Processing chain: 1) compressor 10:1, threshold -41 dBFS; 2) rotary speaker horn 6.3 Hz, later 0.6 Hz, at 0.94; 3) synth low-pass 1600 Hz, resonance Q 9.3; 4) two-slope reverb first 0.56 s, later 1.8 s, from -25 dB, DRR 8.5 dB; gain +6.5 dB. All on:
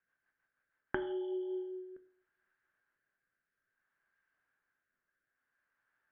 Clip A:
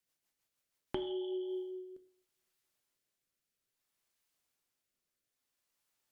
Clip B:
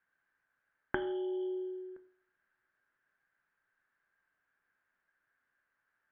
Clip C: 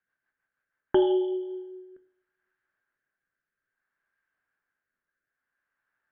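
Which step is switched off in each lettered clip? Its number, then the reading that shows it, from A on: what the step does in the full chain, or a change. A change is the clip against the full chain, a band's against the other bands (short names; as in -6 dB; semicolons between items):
3, 1 kHz band -3.0 dB; 2, loudness change +2.0 LU; 1, mean gain reduction 5.5 dB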